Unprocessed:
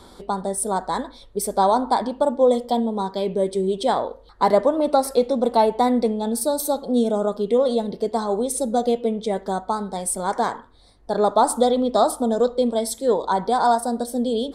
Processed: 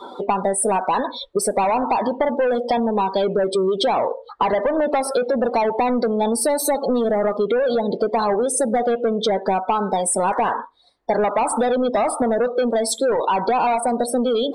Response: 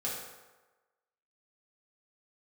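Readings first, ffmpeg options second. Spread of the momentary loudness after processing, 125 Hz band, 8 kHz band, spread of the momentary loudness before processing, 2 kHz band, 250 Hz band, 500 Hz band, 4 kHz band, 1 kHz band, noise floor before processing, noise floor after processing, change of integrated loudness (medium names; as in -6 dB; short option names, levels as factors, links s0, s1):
3 LU, no reading, +3.5 dB, 7 LU, +7.0 dB, 0.0 dB, +1.5 dB, +3.0 dB, +1.5 dB, -48 dBFS, -39 dBFS, +1.5 dB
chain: -filter_complex "[0:a]asplit=2[s0][s1];[s1]highpass=f=720:p=1,volume=14.1,asoftclip=type=tanh:threshold=0.531[s2];[s0][s2]amix=inputs=2:normalize=0,lowpass=f=4900:p=1,volume=0.501,acompressor=threshold=0.112:ratio=12,afftdn=nr=25:nf=-30,volume=1.33"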